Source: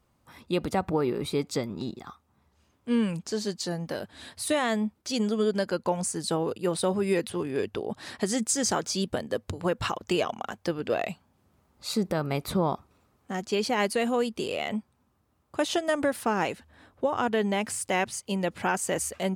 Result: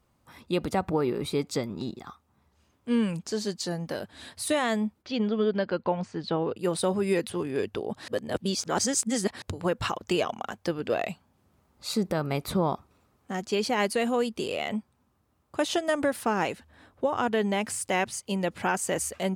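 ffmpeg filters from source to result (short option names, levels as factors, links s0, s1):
-filter_complex "[0:a]asplit=3[s0][s1][s2];[s0]afade=t=out:st=5.02:d=0.02[s3];[s1]lowpass=f=3800:w=0.5412,lowpass=f=3800:w=1.3066,afade=t=in:st=5.02:d=0.02,afade=t=out:st=6.56:d=0.02[s4];[s2]afade=t=in:st=6.56:d=0.02[s5];[s3][s4][s5]amix=inputs=3:normalize=0,asplit=3[s6][s7][s8];[s6]atrim=end=8.082[s9];[s7]atrim=start=8.078:end=9.422,asetpts=PTS-STARTPTS,areverse[s10];[s8]atrim=start=9.418[s11];[s9][s10]acrossfade=d=0.004:c1=hsin:c2=hsin[s12];[s12][s11]acrossfade=d=0.004:c1=hsin:c2=hsin"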